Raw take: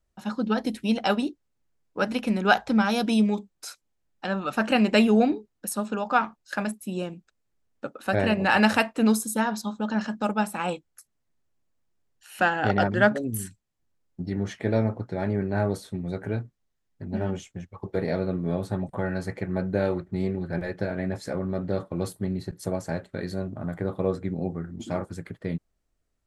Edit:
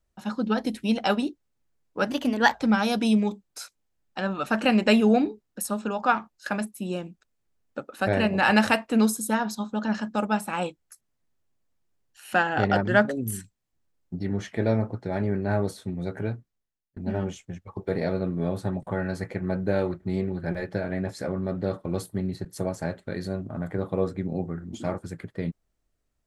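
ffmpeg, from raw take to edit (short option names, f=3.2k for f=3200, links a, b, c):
-filter_complex "[0:a]asplit=4[a][b][c][d];[a]atrim=end=2.104[e];[b]atrim=start=2.1:end=2.6,asetpts=PTS-STARTPTS,asetrate=50715,aresample=44100[f];[c]atrim=start=2.596:end=17.03,asetpts=PTS-STARTPTS,afade=t=out:st=13.684:d=0.75[g];[d]atrim=start=17.03,asetpts=PTS-STARTPTS,afade=t=in:d=0.004:c=hsin[h];[e][f]acrossfade=d=0.004:c1=hsin:c2=hsin[i];[g][h]concat=n=2:v=0:a=1[j];[i][j]acrossfade=d=0.004:c1=hsin:c2=hsin"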